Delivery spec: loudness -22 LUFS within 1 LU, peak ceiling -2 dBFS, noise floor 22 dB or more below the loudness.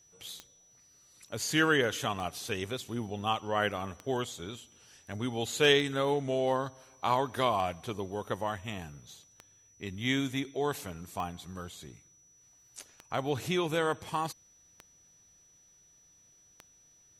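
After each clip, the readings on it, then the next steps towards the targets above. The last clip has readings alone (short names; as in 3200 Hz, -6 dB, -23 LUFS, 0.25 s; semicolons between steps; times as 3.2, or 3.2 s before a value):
clicks 10; steady tone 5900 Hz; tone level -60 dBFS; loudness -32.0 LUFS; peak -10.0 dBFS; loudness target -22.0 LUFS
-> de-click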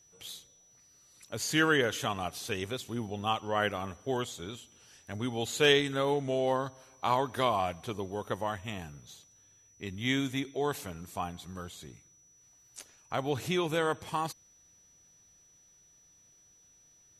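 clicks 0; steady tone 5900 Hz; tone level -60 dBFS
-> notch 5900 Hz, Q 30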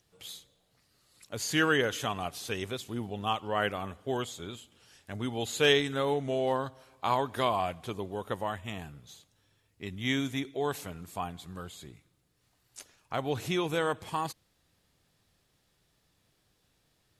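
steady tone none; loudness -31.5 LUFS; peak -10.0 dBFS; loudness target -22.0 LUFS
-> gain +9.5 dB; limiter -2 dBFS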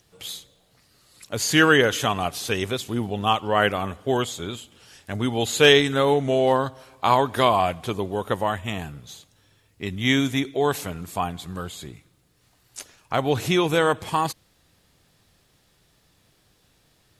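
loudness -22.5 LUFS; peak -2.0 dBFS; noise floor -63 dBFS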